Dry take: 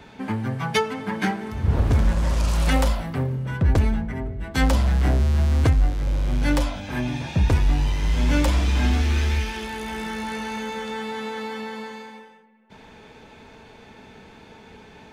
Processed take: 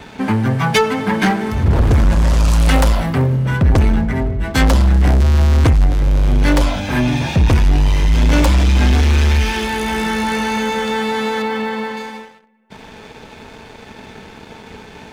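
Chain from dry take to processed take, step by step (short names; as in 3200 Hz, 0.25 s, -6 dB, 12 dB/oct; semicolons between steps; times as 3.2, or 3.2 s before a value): 11.42–11.97 LPF 3600 Hz; sample leveller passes 2; gain +4 dB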